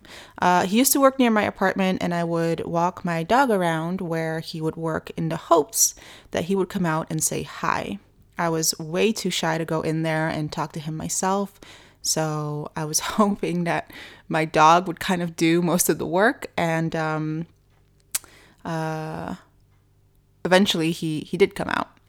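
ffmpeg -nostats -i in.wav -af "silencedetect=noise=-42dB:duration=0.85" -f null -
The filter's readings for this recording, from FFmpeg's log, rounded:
silence_start: 19.42
silence_end: 20.45 | silence_duration: 1.03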